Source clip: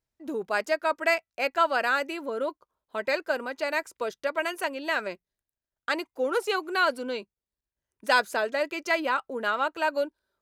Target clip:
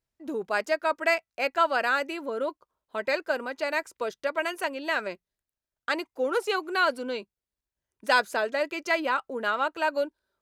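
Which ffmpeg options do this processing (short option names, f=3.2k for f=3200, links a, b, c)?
-af "highshelf=f=11k:g=-4"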